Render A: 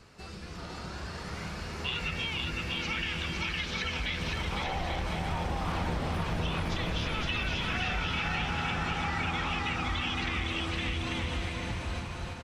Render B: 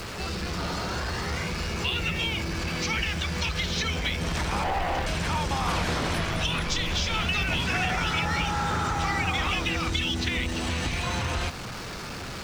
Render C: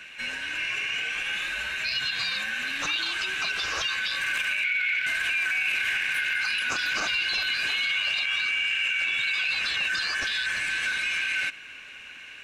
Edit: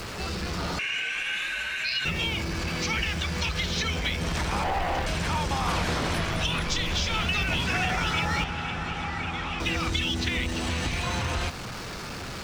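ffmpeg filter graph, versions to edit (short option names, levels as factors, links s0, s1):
-filter_complex "[1:a]asplit=3[s0][s1][s2];[s0]atrim=end=0.792[s3];[2:a]atrim=start=0.788:end=2.052[s4];[s1]atrim=start=2.048:end=8.442[s5];[0:a]atrim=start=8.438:end=9.602[s6];[s2]atrim=start=9.598[s7];[s3][s4]acrossfade=d=0.004:c1=hsin:c2=hsin[s8];[s8][s5]acrossfade=d=0.004:c1=hsin:c2=hsin[s9];[s9][s6]acrossfade=d=0.004:c1=hsin:c2=hsin[s10];[s10][s7]acrossfade=d=0.004:c1=hsin:c2=hsin"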